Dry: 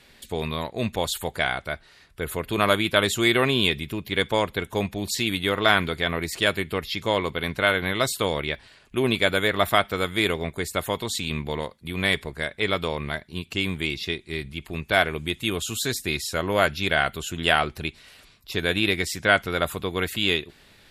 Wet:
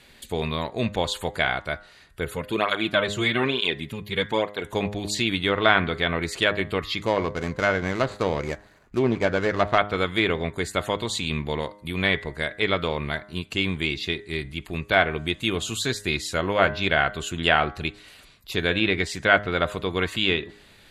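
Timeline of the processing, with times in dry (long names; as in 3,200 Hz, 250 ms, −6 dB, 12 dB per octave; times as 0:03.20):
0:02.25–0:04.64: through-zero flanger with one copy inverted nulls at 1.1 Hz, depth 4 ms
0:07.05–0:09.78: running median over 15 samples
whole clip: notch filter 5,400 Hz, Q 9.6; treble cut that deepens with the level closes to 3,000 Hz, closed at −18 dBFS; hum removal 102.7 Hz, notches 20; level +1.5 dB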